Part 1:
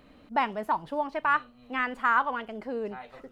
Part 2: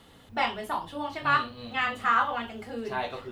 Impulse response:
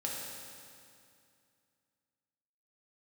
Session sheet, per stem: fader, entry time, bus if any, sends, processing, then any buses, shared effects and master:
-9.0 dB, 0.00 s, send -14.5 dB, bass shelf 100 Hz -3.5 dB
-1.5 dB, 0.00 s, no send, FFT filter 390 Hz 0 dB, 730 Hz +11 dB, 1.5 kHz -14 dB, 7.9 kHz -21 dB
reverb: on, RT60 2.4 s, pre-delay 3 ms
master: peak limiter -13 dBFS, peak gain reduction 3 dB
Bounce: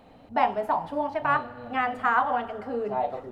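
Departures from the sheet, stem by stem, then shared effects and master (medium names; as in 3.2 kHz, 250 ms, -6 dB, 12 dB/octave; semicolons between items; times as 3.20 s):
stem 1 -9.0 dB -> -2.0 dB; master: missing peak limiter -13 dBFS, peak gain reduction 3 dB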